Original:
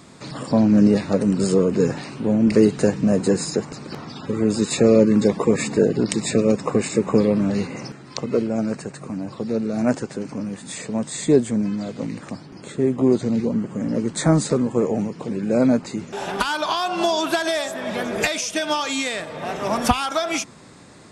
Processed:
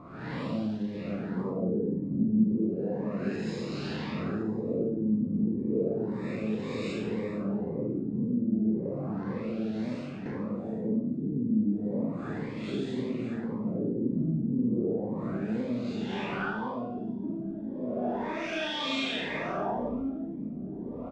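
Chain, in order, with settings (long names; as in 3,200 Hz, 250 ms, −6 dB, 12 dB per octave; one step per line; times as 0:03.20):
spectrum smeared in time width 165 ms
0:02.68–0:03.36: meter weighting curve D
0:09.71–0:10.26: downward expander −19 dBFS
0:16.50–0:17.24: guitar amp tone stack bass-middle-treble 10-0-10
downward compressor 10 to 1, threshold −32 dBFS, peak gain reduction 20.5 dB
surface crackle 370 per second −45 dBFS
on a send: repeating echo 1,065 ms, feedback 42%, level −6 dB
on the sum: four-comb reverb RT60 0.87 s, combs from 33 ms, DRR 1.5 dB
auto-filter low-pass sine 0.33 Hz 230–3,600 Hz
phaser whose notches keep moving one way rising 1.9 Hz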